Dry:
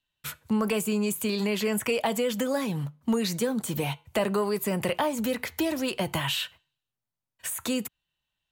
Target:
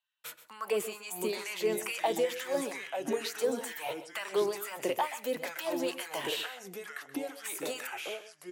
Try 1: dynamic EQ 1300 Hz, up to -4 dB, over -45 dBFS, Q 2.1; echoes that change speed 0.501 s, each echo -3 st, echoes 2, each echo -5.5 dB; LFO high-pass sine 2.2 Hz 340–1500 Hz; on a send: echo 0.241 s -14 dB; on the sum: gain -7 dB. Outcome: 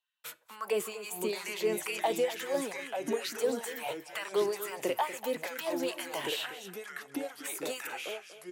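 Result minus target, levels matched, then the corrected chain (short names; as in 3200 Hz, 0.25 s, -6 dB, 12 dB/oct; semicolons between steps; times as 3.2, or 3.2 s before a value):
echo 0.113 s late
dynamic EQ 1300 Hz, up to -4 dB, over -45 dBFS, Q 2.1; echoes that change speed 0.501 s, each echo -3 st, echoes 2, each echo -5.5 dB; LFO high-pass sine 2.2 Hz 340–1500 Hz; on a send: echo 0.128 s -14 dB; on the sum: gain -7 dB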